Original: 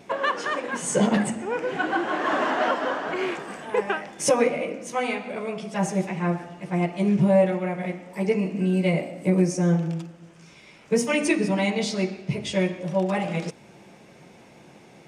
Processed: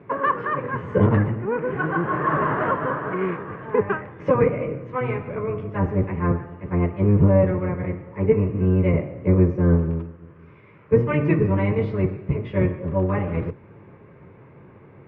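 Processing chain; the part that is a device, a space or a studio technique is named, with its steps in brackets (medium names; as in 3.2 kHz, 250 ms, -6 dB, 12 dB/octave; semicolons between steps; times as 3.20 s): sub-octave bass pedal (octave divider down 1 oct, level +4 dB; cabinet simulation 67–2000 Hz, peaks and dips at 69 Hz -8 dB, 140 Hz +4 dB, 230 Hz -3 dB, 430 Hz +6 dB, 740 Hz -9 dB, 1.1 kHz +7 dB)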